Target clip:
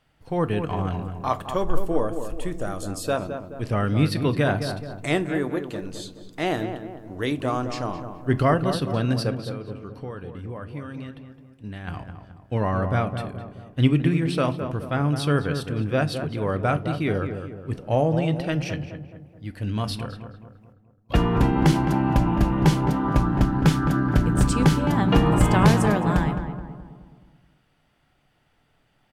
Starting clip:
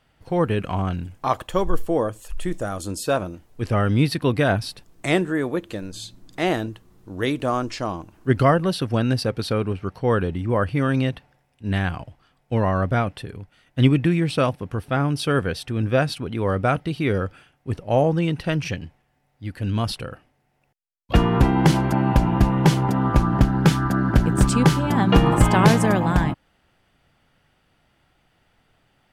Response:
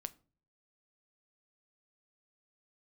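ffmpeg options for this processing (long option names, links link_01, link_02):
-filter_complex "[0:a]asplit=3[link_01][link_02][link_03];[link_01]afade=type=out:start_time=9.33:duration=0.02[link_04];[link_02]acompressor=threshold=-30dB:ratio=6,afade=type=in:start_time=9.33:duration=0.02,afade=type=out:start_time=11.87:duration=0.02[link_05];[link_03]afade=type=in:start_time=11.87:duration=0.02[link_06];[link_04][link_05][link_06]amix=inputs=3:normalize=0,asplit=2[link_07][link_08];[link_08]adelay=213,lowpass=frequency=1500:poles=1,volume=-7.5dB,asplit=2[link_09][link_10];[link_10]adelay=213,lowpass=frequency=1500:poles=1,volume=0.49,asplit=2[link_11][link_12];[link_12]adelay=213,lowpass=frequency=1500:poles=1,volume=0.49,asplit=2[link_13][link_14];[link_14]adelay=213,lowpass=frequency=1500:poles=1,volume=0.49,asplit=2[link_15][link_16];[link_16]adelay=213,lowpass=frequency=1500:poles=1,volume=0.49,asplit=2[link_17][link_18];[link_18]adelay=213,lowpass=frequency=1500:poles=1,volume=0.49[link_19];[link_07][link_09][link_11][link_13][link_15][link_17][link_19]amix=inputs=7:normalize=0[link_20];[1:a]atrim=start_sample=2205[link_21];[link_20][link_21]afir=irnorm=-1:irlink=0"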